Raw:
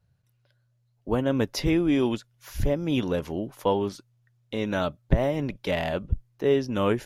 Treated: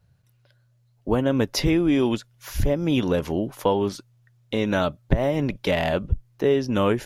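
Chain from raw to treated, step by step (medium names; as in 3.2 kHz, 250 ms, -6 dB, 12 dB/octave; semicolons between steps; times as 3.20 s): compression 2:1, threshold -26 dBFS, peak gain reduction 7.5 dB; trim +6.5 dB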